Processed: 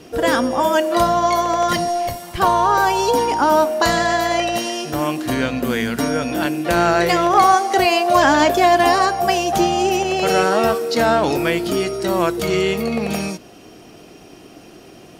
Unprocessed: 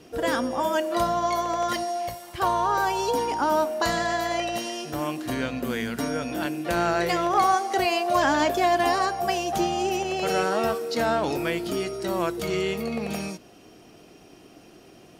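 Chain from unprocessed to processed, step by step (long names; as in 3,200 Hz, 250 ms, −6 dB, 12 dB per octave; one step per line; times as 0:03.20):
0:01.70–0:02.49: sub-octave generator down 1 octave, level −1 dB
level +8 dB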